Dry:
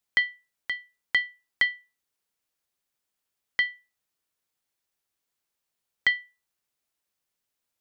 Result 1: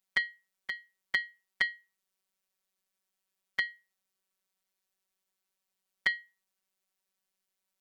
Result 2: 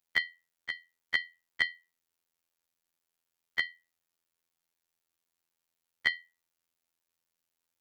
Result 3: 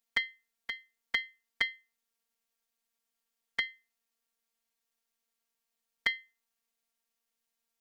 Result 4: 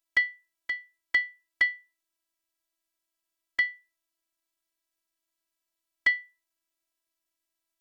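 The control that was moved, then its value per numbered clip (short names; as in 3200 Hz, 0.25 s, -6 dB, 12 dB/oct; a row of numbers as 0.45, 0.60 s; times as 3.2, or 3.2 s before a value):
robotiser, frequency: 190, 84, 230, 330 Hz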